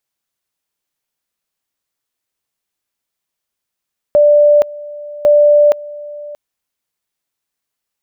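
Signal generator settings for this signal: two-level tone 589 Hz -5 dBFS, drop 20.5 dB, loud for 0.47 s, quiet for 0.63 s, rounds 2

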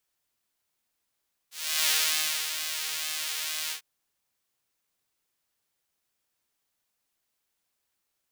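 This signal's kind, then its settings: synth patch with pulse-width modulation D#3, noise -16 dB, filter highpass, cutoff 2.8 kHz, Q 0.81, filter envelope 0.5 oct, attack 368 ms, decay 0.60 s, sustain -8.5 dB, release 0.10 s, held 2.20 s, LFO 1.1 Hz, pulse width 49%, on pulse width 17%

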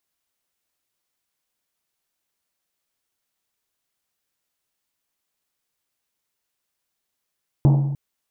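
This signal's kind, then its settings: Risset drum length 0.30 s, pitch 140 Hz, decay 1.30 s, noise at 620 Hz, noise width 600 Hz, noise 10%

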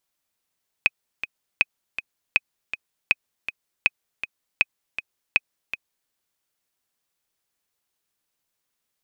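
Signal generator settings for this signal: metronome 160 bpm, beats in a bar 2, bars 7, 2.52 kHz, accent 11.5 dB -3.5 dBFS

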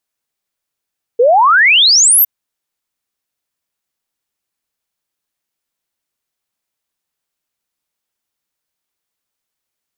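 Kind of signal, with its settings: log sweep 450 Hz -> 14 kHz 1.06 s -5.5 dBFS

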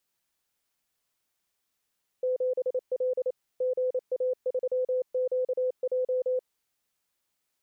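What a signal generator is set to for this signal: Morse "7L GA3QJ" 28 wpm 508 Hz -24 dBFS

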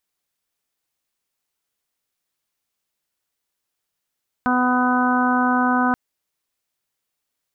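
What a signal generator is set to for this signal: steady additive tone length 1.48 s, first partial 250 Hz, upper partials -12/-4/-4.5/-5/-5 dB, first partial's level -19 dB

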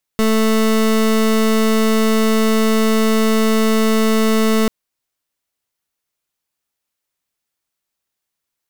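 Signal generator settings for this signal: pulse 220 Hz, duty 27% -14 dBFS 4.49 s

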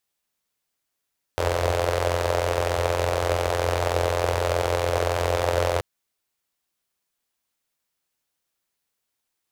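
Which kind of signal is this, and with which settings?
four-cylinder engine model, steady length 4.43 s, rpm 2600, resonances 86/520 Hz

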